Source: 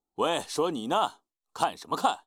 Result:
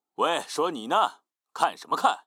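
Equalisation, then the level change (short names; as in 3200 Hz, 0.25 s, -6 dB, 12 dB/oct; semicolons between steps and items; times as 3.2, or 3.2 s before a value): Bessel high-pass 220 Hz, order 2; bell 1400 Hz +6 dB 1.5 oct; 0.0 dB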